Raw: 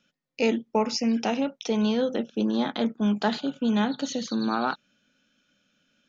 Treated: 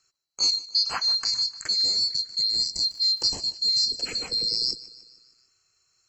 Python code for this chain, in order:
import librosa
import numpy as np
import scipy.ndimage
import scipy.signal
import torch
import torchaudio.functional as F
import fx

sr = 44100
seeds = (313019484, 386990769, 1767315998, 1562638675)

y = fx.band_swap(x, sr, width_hz=4000)
y = fx.echo_feedback(y, sr, ms=150, feedback_pct=55, wet_db=-18.5)
y = fx.dmg_crackle(y, sr, seeds[0], per_s=370.0, level_db=-46.0, at=(2.73, 3.32), fade=0.02)